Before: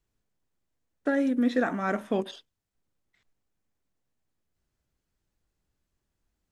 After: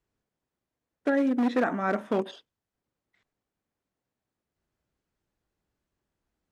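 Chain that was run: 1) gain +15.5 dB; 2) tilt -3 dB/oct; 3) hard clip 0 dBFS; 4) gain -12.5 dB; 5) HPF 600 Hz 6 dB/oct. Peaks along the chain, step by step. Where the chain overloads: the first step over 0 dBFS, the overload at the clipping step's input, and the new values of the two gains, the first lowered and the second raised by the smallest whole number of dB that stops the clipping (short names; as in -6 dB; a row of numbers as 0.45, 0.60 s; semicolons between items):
+2.5, +5.5, 0.0, -12.5, -12.5 dBFS; step 1, 5.5 dB; step 1 +9.5 dB, step 4 -6.5 dB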